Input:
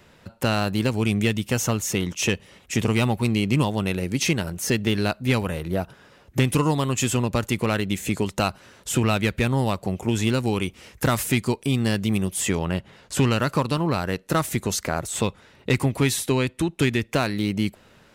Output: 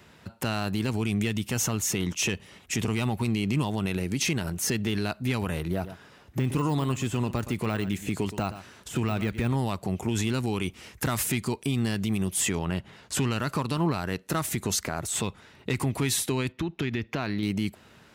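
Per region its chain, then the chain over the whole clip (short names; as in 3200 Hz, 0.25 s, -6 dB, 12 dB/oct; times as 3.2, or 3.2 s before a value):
5.71–9.56 de-esser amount 75% + echo 0.12 s -17 dB
16.52–17.43 running mean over 5 samples + compressor 10:1, threshold -24 dBFS
whole clip: HPF 53 Hz; bell 530 Hz -6 dB 0.3 oct; limiter -18 dBFS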